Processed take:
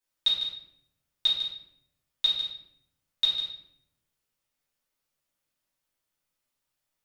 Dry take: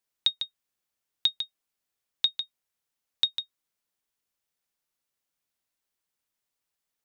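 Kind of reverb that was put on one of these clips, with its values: simulated room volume 170 m³, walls mixed, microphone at 2.7 m; trim -6.5 dB

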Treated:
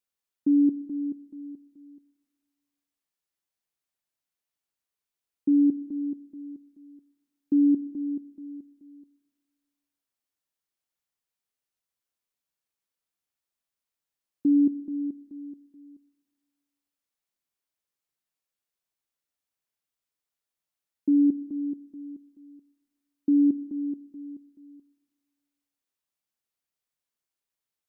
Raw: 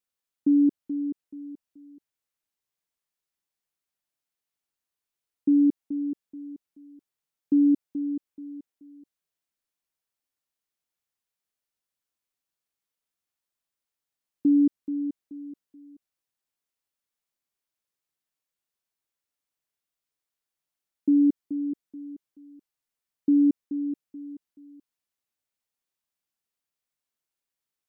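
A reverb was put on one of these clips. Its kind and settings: Schroeder reverb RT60 1.5 s, combs from 28 ms, DRR 16 dB; trim -1.5 dB

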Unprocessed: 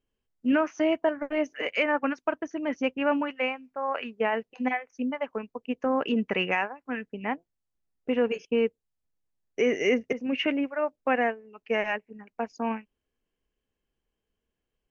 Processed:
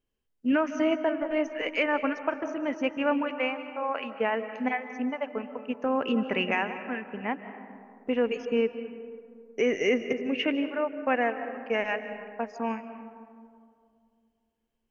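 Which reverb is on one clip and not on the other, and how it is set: algorithmic reverb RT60 2.3 s, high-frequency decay 0.35×, pre-delay 115 ms, DRR 10 dB; trim -1 dB

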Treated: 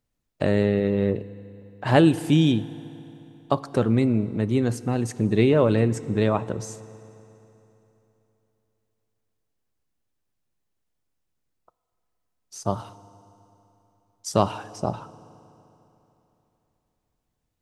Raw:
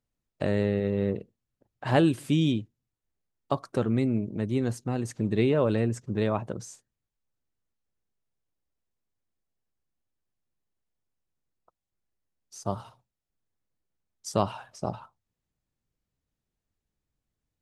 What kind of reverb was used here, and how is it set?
FDN reverb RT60 3.3 s, high-frequency decay 0.85×, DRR 16 dB; trim +5 dB

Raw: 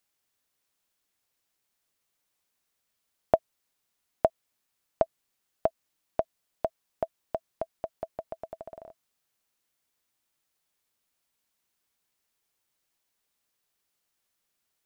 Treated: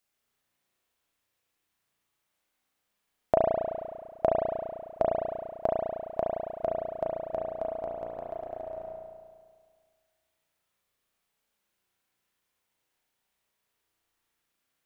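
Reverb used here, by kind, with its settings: spring tank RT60 1.8 s, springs 34 ms, chirp 45 ms, DRR -4 dB; trim -2.5 dB

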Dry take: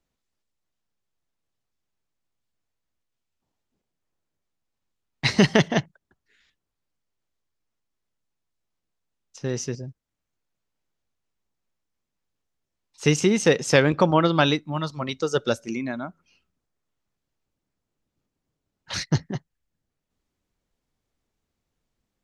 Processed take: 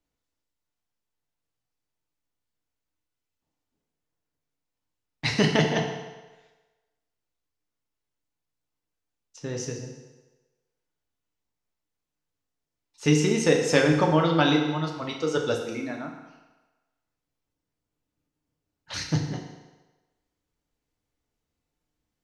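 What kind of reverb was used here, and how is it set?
FDN reverb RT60 1.2 s, low-frequency decay 0.75×, high-frequency decay 0.9×, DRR 0.5 dB; trim -5 dB

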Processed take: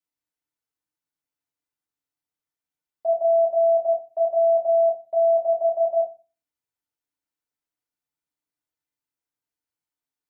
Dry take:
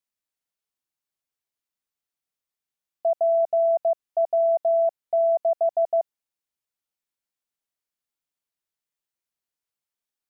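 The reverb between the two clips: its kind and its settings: FDN reverb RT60 0.31 s, low-frequency decay 1.5×, high-frequency decay 0.45×, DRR -4 dB; trim -6.5 dB

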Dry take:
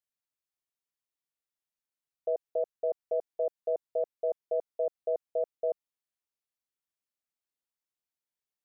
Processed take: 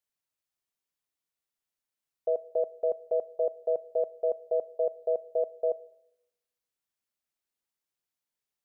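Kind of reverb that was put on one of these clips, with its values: algorithmic reverb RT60 0.89 s, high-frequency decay 0.75×, pre-delay 0 ms, DRR 19 dB; trim +2.5 dB

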